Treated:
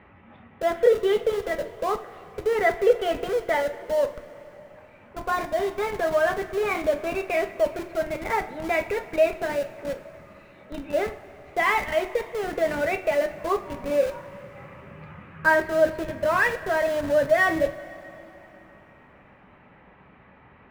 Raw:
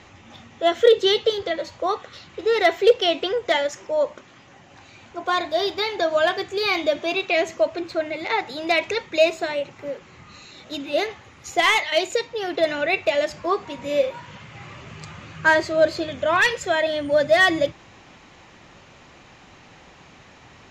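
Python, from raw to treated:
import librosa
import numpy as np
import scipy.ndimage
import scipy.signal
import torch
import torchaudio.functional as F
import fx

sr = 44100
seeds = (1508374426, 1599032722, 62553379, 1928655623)

p1 = scipy.signal.sosfilt(scipy.signal.butter(4, 2200.0, 'lowpass', fs=sr, output='sos'), x)
p2 = fx.schmitt(p1, sr, flips_db=-26.5)
p3 = p1 + F.gain(torch.from_numpy(p2), -8.0).numpy()
p4 = fx.rev_double_slope(p3, sr, seeds[0], early_s=0.27, late_s=3.4, knee_db=-18, drr_db=6.5)
y = F.gain(torch.from_numpy(p4), -4.5).numpy()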